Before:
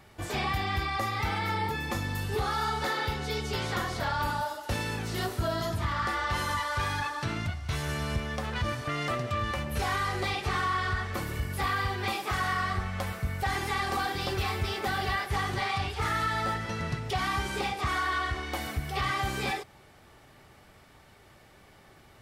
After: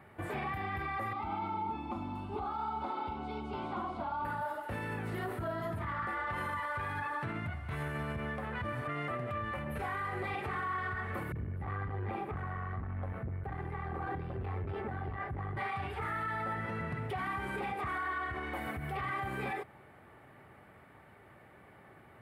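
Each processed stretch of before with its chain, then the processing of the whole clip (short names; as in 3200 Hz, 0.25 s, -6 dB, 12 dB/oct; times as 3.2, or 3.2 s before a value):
1.13–4.25 LPF 4100 Hz + fixed phaser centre 480 Hz, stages 6
11.32–15.57 tilt -4 dB/oct + tube stage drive 17 dB, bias 0.7 + bands offset in time lows, highs 30 ms, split 250 Hz
whole clip: EQ curve 2000 Hz 0 dB, 5900 Hz -25 dB, 9400 Hz -10 dB; limiter -28.5 dBFS; HPF 90 Hz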